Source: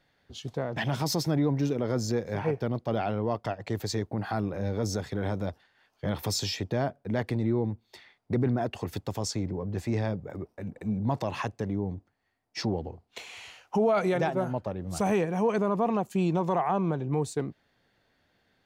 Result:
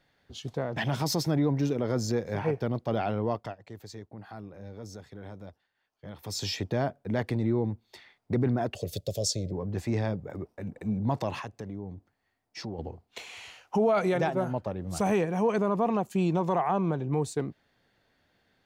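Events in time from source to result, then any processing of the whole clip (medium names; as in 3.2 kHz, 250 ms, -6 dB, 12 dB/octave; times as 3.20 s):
3.30–6.51 s: dip -13 dB, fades 0.29 s
8.75–9.52 s: FFT filter 160 Hz 0 dB, 280 Hz -9 dB, 600 Hz +9 dB, 900 Hz -26 dB, 1.8 kHz -14 dB, 3.7 kHz +5 dB
11.39–12.79 s: compression 1.5:1, threshold -47 dBFS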